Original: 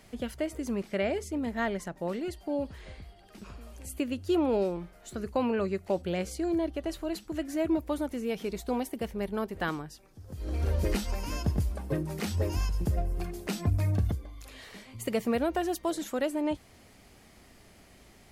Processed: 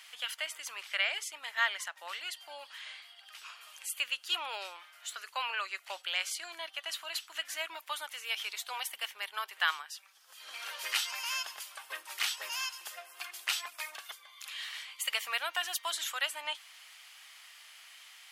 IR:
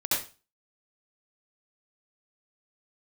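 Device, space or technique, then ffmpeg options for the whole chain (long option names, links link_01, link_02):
headphones lying on a table: -af "highpass=frequency=1100:width=0.5412,highpass=frequency=1100:width=1.3066,equalizer=frequency=3100:width_type=o:width=0.59:gain=8,volume=5dB"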